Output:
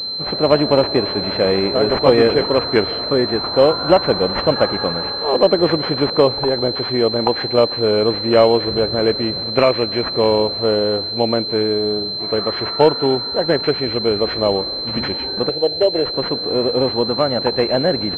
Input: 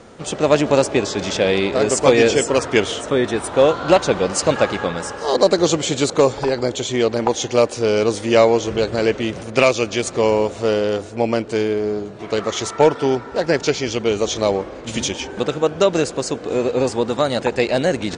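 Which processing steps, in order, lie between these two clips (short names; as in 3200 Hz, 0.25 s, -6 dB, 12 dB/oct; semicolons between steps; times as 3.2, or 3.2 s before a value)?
15.49–16.14 fixed phaser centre 500 Hz, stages 4; pulse-width modulation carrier 4100 Hz; gain +1 dB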